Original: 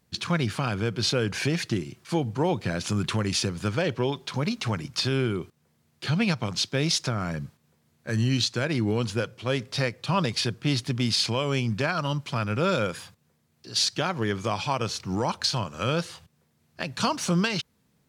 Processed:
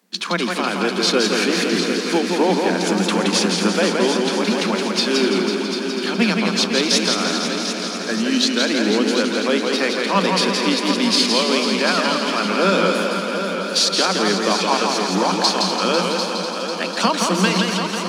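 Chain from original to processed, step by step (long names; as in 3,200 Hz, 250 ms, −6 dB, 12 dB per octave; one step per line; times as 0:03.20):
Chebyshev high-pass filter 180 Hz, order 10
echo machine with several playback heads 248 ms, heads all three, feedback 60%, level −11.5 dB
feedback echo with a swinging delay time 169 ms, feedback 49%, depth 85 cents, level −4 dB
level +7.5 dB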